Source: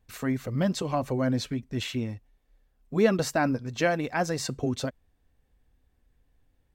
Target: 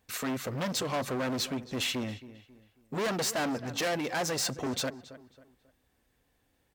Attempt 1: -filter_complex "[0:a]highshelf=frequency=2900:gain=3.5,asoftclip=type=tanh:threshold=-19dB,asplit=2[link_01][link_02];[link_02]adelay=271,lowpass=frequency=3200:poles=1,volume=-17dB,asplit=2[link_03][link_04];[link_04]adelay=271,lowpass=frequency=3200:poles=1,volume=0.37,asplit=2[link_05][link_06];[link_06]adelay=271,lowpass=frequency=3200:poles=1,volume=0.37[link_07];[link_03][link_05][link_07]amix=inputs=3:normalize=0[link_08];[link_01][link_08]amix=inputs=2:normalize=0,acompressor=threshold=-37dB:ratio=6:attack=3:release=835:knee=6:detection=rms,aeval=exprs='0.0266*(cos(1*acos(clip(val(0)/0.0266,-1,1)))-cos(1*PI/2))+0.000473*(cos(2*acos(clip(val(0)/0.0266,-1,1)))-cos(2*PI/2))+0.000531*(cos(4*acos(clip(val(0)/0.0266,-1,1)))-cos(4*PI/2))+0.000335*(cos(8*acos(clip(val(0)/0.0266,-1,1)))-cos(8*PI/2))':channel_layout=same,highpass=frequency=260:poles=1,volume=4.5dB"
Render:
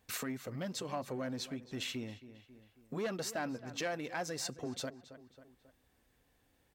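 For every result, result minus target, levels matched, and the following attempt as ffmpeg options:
downward compressor: peak gain reduction +15 dB; soft clipping: distortion −6 dB
-filter_complex "[0:a]highshelf=frequency=2900:gain=3.5,asoftclip=type=tanh:threshold=-19dB,asplit=2[link_01][link_02];[link_02]adelay=271,lowpass=frequency=3200:poles=1,volume=-17dB,asplit=2[link_03][link_04];[link_04]adelay=271,lowpass=frequency=3200:poles=1,volume=0.37,asplit=2[link_05][link_06];[link_06]adelay=271,lowpass=frequency=3200:poles=1,volume=0.37[link_07];[link_03][link_05][link_07]amix=inputs=3:normalize=0[link_08];[link_01][link_08]amix=inputs=2:normalize=0,aeval=exprs='0.0266*(cos(1*acos(clip(val(0)/0.0266,-1,1)))-cos(1*PI/2))+0.000473*(cos(2*acos(clip(val(0)/0.0266,-1,1)))-cos(2*PI/2))+0.000531*(cos(4*acos(clip(val(0)/0.0266,-1,1)))-cos(4*PI/2))+0.000335*(cos(8*acos(clip(val(0)/0.0266,-1,1)))-cos(8*PI/2))':channel_layout=same,highpass=frequency=260:poles=1,volume=4.5dB"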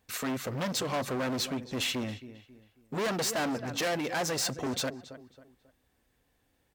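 soft clipping: distortion −6 dB
-filter_complex "[0:a]highshelf=frequency=2900:gain=3.5,asoftclip=type=tanh:threshold=-26dB,asplit=2[link_01][link_02];[link_02]adelay=271,lowpass=frequency=3200:poles=1,volume=-17dB,asplit=2[link_03][link_04];[link_04]adelay=271,lowpass=frequency=3200:poles=1,volume=0.37,asplit=2[link_05][link_06];[link_06]adelay=271,lowpass=frequency=3200:poles=1,volume=0.37[link_07];[link_03][link_05][link_07]amix=inputs=3:normalize=0[link_08];[link_01][link_08]amix=inputs=2:normalize=0,aeval=exprs='0.0266*(cos(1*acos(clip(val(0)/0.0266,-1,1)))-cos(1*PI/2))+0.000473*(cos(2*acos(clip(val(0)/0.0266,-1,1)))-cos(2*PI/2))+0.000531*(cos(4*acos(clip(val(0)/0.0266,-1,1)))-cos(4*PI/2))+0.000335*(cos(8*acos(clip(val(0)/0.0266,-1,1)))-cos(8*PI/2))':channel_layout=same,highpass=frequency=260:poles=1,volume=4.5dB"

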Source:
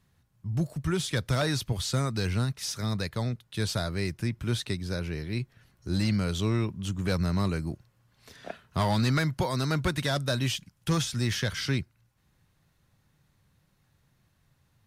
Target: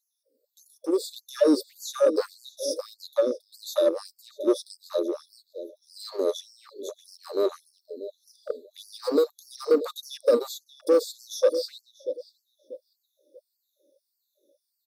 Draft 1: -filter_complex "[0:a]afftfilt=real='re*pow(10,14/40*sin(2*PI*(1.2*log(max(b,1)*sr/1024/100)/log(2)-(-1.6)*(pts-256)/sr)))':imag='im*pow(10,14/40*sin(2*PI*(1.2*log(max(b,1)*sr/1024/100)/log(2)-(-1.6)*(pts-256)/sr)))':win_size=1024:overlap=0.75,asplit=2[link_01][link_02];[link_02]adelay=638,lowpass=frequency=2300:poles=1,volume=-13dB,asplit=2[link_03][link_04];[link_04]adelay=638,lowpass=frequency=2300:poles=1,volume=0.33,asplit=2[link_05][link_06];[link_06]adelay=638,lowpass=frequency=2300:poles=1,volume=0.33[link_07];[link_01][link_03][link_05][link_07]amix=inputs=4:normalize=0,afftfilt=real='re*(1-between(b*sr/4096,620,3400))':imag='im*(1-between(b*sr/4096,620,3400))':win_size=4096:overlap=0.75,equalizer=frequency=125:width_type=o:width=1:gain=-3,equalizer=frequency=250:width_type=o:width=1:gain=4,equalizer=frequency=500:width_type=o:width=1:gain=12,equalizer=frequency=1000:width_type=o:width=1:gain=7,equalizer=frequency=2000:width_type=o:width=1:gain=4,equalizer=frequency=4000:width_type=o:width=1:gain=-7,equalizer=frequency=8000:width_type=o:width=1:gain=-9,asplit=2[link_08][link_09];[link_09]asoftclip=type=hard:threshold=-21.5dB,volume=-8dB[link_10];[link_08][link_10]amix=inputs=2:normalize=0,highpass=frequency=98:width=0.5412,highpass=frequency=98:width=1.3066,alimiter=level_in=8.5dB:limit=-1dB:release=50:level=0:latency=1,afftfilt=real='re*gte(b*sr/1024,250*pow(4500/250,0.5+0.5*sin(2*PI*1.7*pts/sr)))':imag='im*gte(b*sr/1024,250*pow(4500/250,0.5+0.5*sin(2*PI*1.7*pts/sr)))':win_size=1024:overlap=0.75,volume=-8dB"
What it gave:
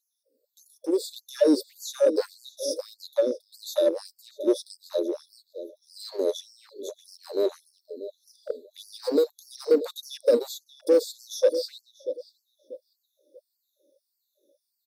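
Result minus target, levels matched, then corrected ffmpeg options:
1,000 Hz band −6.5 dB
-filter_complex "[0:a]afftfilt=real='re*pow(10,14/40*sin(2*PI*(1.2*log(max(b,1)*sr/1024/100)/log(2)-(-1.6)*(pts-256)/sr)))':imag='im*pow(10,14/40*sin(2*PI*(1.2*log(max(b,1)*sr/1024/100)/log(2)-(-1.6)*(pts-256)/sr)))':win_size=1024:overlap=0.75,asplit=2[link_01][link_02];[link_02]adelay=638,lowpass=frequency=2300:poles=1,volume=-13dB,asplit=2[link_03][link_04];[link_04]adelay=638,lowpass=frequency=2300:poles=1,volume=0.33,asplit=2[link_05][link_06];[link_06]adelay=638,lowpass=frequency=2300:poles=1,volume=0.33[link_07];[link_01][link_03][link_05][link_07]amix=inputs=4:normalize=0,afftfilt=real='re*(1-between(b*sr/4096,620,3400))':imag='im*(1-between(b*sr/4096,620,3400))':win_size=4096:overlap=0.75,equalizer=frequency=125:width_type=o:width=1:gain=-3,equalizer=frequency=250:width_type=o:width=1:gain=4,equalizer=frequency=500:width_type=o:width=1:gain=12,equalizer=frequency=1000:width_type=o:width=1:gain=7,equalizer=frequency=2000:width_type=o:width=1:gain=4,equalizer=frequency=4000:width_type=o:width=1:gain=-7,equalizer=frequency=8000:width_type=o:width=1:gain=-9,asplit=2[link_08][link_09];[link_09]asoftclip=type=hard:threshold=-21.5dB,volume=-8dB[link_10];[link_08][link_10]amix=inputs=2:normalize=0,highpass=frequency=98:width=0.5412,highpass=frequency=98:width=1.3066,equalizer=frequency=1200:width_type=o:width=0.27:gain=14,alimiter=level_in=8.5dB:limit=-1dB:release=50:level=0:latency=1,afftfilt=real='re*gte(b*sr/1024,250*pow(4500/250,0.5+0.5*sin(2*PI*1.7*pts/sr)))':imag='im*gte(b*sr/1024,250*pow(4500/250,0.5+0.5*sin(2*PI*1.7*pts/sr)))':win_size=1024:overlap=0.75,volume=-8dB"

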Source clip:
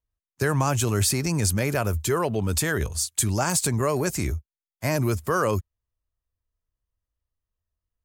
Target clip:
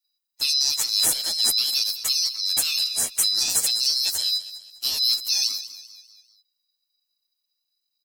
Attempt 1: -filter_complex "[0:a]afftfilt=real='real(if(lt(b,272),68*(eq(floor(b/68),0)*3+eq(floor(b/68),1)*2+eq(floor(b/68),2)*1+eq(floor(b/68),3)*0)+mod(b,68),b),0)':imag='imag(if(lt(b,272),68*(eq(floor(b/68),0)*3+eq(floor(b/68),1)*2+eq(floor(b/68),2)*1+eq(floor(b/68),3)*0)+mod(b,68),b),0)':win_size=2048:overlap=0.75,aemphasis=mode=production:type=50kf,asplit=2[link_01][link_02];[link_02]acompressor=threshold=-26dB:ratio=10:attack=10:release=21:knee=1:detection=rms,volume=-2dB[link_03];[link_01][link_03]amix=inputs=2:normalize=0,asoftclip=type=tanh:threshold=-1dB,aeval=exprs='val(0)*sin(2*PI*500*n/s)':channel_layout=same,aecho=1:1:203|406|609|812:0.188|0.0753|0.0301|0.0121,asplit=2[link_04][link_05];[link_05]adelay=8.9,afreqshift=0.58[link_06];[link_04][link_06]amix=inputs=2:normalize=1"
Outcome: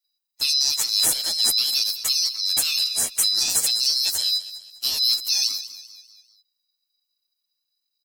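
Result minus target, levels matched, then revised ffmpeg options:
downward compressor: peak gain reduction −6.5 dB
-filter_complex "[0:a]afftfilt=real='real(if(lt(b,272),68*(eq(floor(b/68),0)*3+eq(floor(b/68),1)*2+eq(floor(b/68),2)*1+eq(floor(b/68),3)*0)+mod(b,68),b),0)':imag='imag(if(lt(b,272),68*(eq(floor(b/68),0)*3+eq(floor(b/68),1)*2+eq(floor(b/68),2)*1+eq(floor(b/68),3)*0)+mod(b,68),b),0)':win_size=2048:overlap=0.75,aemphasis=mode=production:type=50kf,asplit=2[link_01][link_02];[link_02]acompressor=threshold=-33dB:ratio=10:attack=10:release=21:knee=1:detection=rms,volume=-2dB[link_03];[link_01][link_03]amix=inputs=2:normalize=0,asoftclip=type=tanh:threshold=-1dB,aeval=exprs='val(0)*sin(2*PI*500*n/s)':channel_layout=same,aecho=1:1:203|406|609|812:0.188|0.0753|0.0301|0.0121,asplit=2[link_04][link_05];[link_05]adelay=8.9,afreqshift=0.58[link_06];[link_04][link_06]amix=inputs=2:normalize=1"

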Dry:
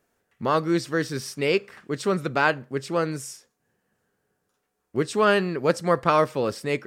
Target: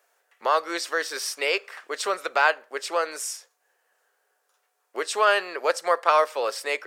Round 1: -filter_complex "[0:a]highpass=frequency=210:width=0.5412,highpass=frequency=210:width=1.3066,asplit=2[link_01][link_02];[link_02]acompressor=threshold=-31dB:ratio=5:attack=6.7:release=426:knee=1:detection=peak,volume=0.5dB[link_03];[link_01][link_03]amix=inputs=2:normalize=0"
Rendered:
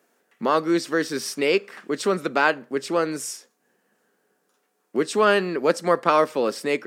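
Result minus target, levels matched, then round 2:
250 Hz band +14.5 dB
-filter_complex "[0:a]highpass=frequency=550:width=0.5412,highpass=frequency=550:width=1.3066,asplit=2[link_01][link_02];[link_02]acompressor=threshold=-31dB:ratio=5:attack=6.7:release=426:knee=1:detection=peak,volume=0.5dB[link_03];[link_01][link_03]amix=inputs=2:normalize=0"

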